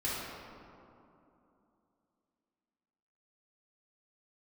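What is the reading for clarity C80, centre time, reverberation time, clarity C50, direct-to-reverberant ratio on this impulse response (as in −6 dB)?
−0.5 dB, 148 ms, 2.9 s, −3.0 dB, −9.0 dB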